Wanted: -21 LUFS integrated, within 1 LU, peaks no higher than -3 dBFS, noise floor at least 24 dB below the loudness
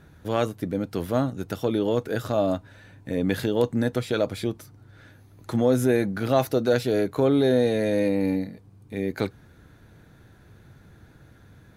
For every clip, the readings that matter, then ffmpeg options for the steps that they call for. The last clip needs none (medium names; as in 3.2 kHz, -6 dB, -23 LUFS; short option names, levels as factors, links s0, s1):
loudness -25.0 LUFS; peak level -7.5 dBFS; loudness target -21.0 LUFS
-> -af "volume=1.58"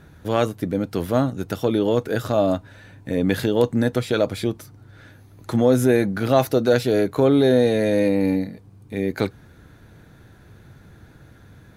loudness -21.0 LUFS; peak level -4.0 dBFS; noise floor -49 dBFS